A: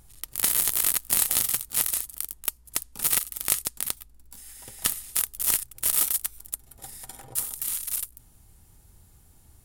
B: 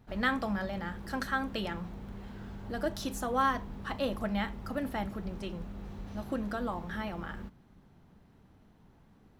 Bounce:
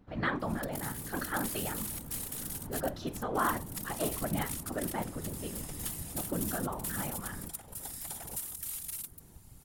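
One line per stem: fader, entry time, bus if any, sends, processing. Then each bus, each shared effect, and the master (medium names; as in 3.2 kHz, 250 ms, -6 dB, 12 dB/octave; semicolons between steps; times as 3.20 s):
+2.0 dB, 0.40 s, muted 2.19–2.73 s, no send, echo send -3.5 dB, peak limiter -13.5 dBFS, peak gain reduction 10.5 dB; compression 5:1, threshold -34 dBFS, peak gain reduction 10.5 dB; auto duck -9 dB, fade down 1.20 s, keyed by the second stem
+3.0 dB, 0.00 s, no send, no echo send, low-pass 2.9 kHz 6 dB/octave; flange 0.53 Hz, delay 6.2 ms, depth 3 ms, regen -71%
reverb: none
echo: delay 613 ms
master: whisper effect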